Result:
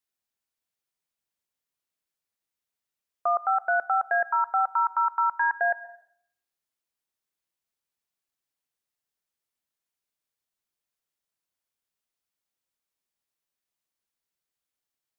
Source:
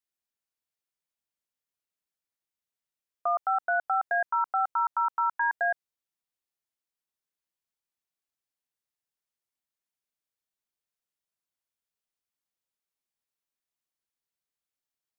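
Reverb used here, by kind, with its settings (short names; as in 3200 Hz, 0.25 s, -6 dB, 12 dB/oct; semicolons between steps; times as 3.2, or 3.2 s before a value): plate-style reverb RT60 0.64 s, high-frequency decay 0.95×, pre-delay 0.105 s, DRR 17.5 dB; gain +2.5 dB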